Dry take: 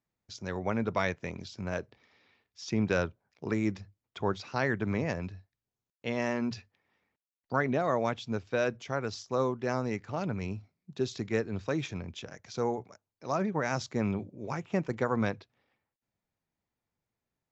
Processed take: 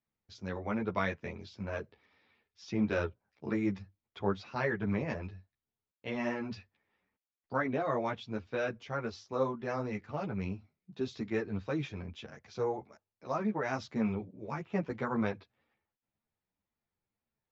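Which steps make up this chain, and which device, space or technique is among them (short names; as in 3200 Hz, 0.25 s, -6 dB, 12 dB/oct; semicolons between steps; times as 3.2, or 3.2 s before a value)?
string-machine ensemble chorus (ensemble effect; LPF 4100 Hz 12 dB/oct)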